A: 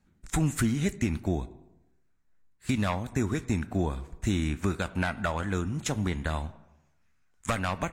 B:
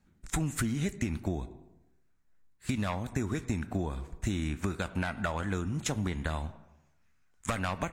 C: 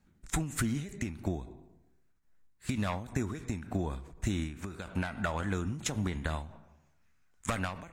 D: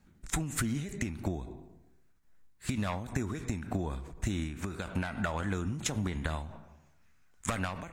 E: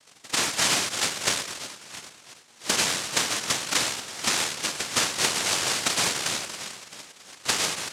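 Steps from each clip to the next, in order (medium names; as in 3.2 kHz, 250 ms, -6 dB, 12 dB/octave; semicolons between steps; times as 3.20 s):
compression, threshold -27 dBFS, peak gain reduction 6.5 dB
endings held to a fixed fall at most 100 dB/s
compression 2.5:1, threshold -35 dBFS, peak gain reduction 6.5 dB; trim +4.5 dB
backward echo that repeats 334 ms, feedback 57%, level -13.5 dB; noise-vocoded speech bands 1; trim +8.5 dB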